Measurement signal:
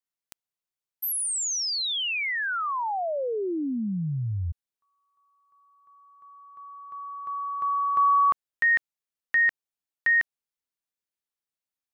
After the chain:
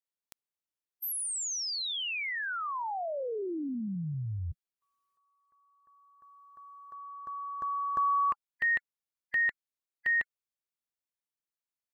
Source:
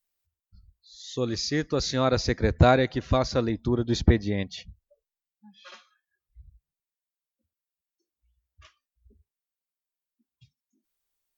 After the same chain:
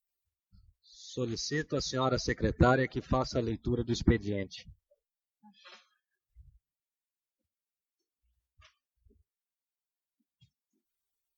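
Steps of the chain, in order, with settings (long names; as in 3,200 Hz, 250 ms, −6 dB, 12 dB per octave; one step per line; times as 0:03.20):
spectral magnitudes quantised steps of 30 dB
level −5.5 dB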